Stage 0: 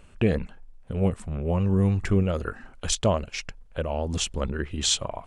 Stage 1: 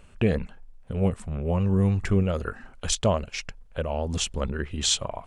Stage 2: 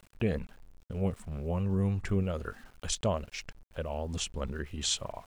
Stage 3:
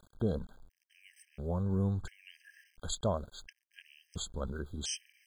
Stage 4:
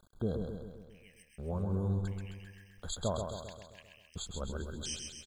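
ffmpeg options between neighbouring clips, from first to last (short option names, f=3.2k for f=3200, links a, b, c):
-af "equalizer=f=320:t=o:w=0.24:g=-4"
-af "aeval=exprs='val(0)*gte(abs(val(0)),0.00447)':c=same,volume=-7dB"
-af "afftfilt=real='re*gt(sin(2*PI*0.72*pts/sr)*(1-2*mod(floor(b*sr/1024/1600),2)),0)':imag='im*gt(sin(2*PI*0.72*pts/sr)*(1-2*mod(floor(b*sr/1024/1600),2)),0)':win_size=1024:overlap=0.75,volume=-2dB"
-af "aecho=1:1:132|264|396|528|660|792|924:0.562|0.315|0.176|0.0988|0.0553|0.031|0.0173,volume=-2.5dB"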